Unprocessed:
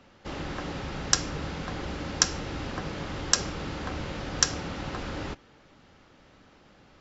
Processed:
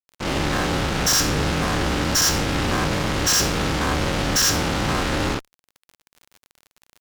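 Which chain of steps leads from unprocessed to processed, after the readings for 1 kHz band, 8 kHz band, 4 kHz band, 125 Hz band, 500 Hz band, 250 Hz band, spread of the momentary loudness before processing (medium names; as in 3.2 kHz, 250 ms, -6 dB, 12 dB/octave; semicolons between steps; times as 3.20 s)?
+12.0 dB, no reading, +9.0 dB, +11.5 dB, +11.5 dB, +11.5 dB, 10 LU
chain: every event in the spectrogram widened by 120 ms; fuzz box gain 30 dB, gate -35 dBFS; crackle 39 per s -31 dBFS; trim -3 dB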